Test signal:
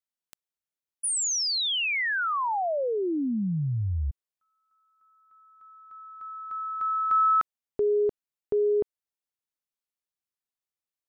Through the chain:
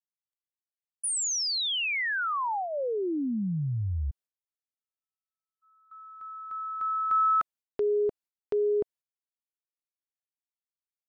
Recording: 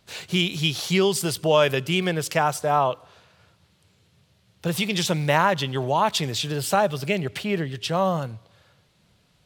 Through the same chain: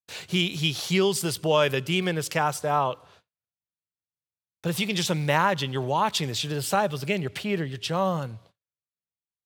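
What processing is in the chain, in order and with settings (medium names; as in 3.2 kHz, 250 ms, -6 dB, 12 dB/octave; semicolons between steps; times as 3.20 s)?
gate -50 dBFS, range -44 dB; dynamic bell 670 Hz, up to -6 dB, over -42 dBFS, Q 7.2; trim -2 dB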